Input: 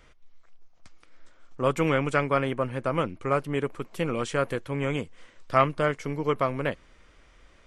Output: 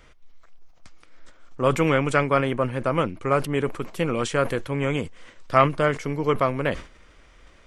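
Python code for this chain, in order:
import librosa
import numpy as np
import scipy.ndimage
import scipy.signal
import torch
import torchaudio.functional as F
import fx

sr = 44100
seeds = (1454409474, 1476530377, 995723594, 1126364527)

y = fx.sustainer(x, sr, db_per_s=140.0)
y = y * 10.0 ** (3.5 / 20.0)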